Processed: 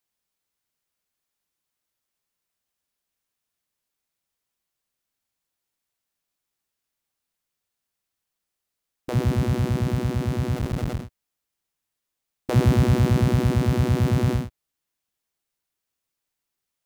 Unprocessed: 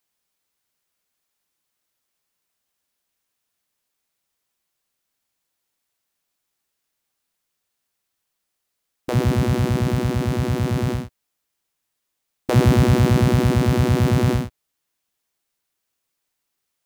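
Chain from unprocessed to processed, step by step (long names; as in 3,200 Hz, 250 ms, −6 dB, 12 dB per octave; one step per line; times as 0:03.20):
0:10.56–0:11.03: sub-harmonics by changed cycles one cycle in 3, muted
low-shelf EQ 160 Hz +4.5 dB
level −5.5 dB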